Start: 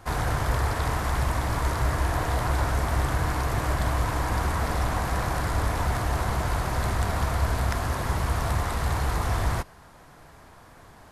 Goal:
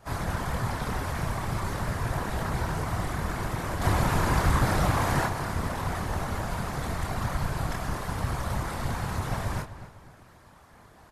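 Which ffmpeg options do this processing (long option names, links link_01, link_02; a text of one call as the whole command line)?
ffmpeg -i in.wav -filter_complex "[0:a]asplit=3[link_01][link_02][link_03];[link_01]afade=type=out:start_time=3.81:duration=0.02[link_04];[link_02]acontrast=73,afade=type=in:start_time=3.81:duration=0.02,afade=type=out:start_time=5.25:duration=0.02[link_05];[link_03]afade=type=in:start_time=5.25:duration=0.02[link_06];[link_04][link_05][link_06]amix=inputs=3:normalize=0,asplit=2[link_07][link_08];[link_08]adelay=26,volume=-3dB[link_09];[link_07][link_09]amix=inputs=2:normalize=0,afftfilt=real='hypot(re,im)*cos(2*PI*random(0))':imag='hypot(re,im)*sin(2*PI*random(1))':win_size=512:overlap=0.75,asplit=2[link_10][link_11];[link_11]adelay=253,lowpass=frequency=3500:poles=1,volume=-13dB,asplit=2[link_12][link_13];[link_13]adelay=253,lowpass=frequency=3500:poles=1,volume=0.39,asplit=2[link_14][link_15];[link_15]adelay=253,lowpass=frequency=3500:poles=1,volume=0.39,asplit=2[link_16][link_17];[link_17]adelay=253,lowpass=frequency=3500:poles=1,volume=0.39[link_18];[link_12][link_14][link_16][link_18]amix=inputs=4:normalize=0[link_19];[link_10][link_19]amix=inputs=2:normalize=0" out.wav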